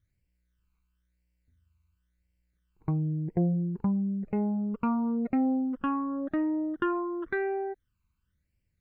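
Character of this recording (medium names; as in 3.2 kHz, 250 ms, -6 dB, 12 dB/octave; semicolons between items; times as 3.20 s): phasing stages 12, 0.96 Hz, lowest notch 570–1200 Hz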